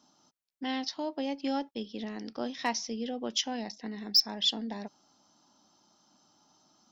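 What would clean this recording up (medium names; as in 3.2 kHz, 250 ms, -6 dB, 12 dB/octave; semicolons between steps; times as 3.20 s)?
clip repair -16.5 dBFS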